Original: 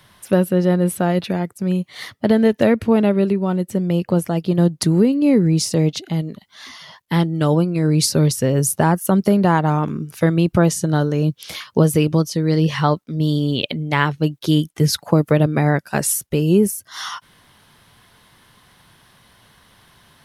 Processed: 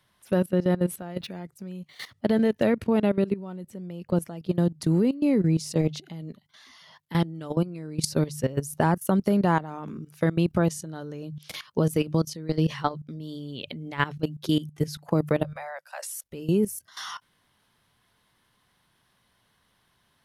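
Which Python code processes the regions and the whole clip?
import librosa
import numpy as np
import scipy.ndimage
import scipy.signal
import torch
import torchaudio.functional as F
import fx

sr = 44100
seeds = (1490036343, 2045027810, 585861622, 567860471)

y = fx.chain(x, sr, fx.high_shelf(hz=3400.0, db=4.0),
    fx.resample_linear(factor=2), at=(1.18, 2.19))
y = fx.chain(y, sr, fx.steep_highpass(hz=520.0, slope=96),
    fx.high_shelf(hz=5600.0, db=-3.0), at=(15.44, 16.24))
y = fx.hum_notches(y, sr, base_hz=50, count=3)
y = fx.level_steps(y, sr, step_db=16)
y = y * 10.0 ** (-4.5 / 20.0)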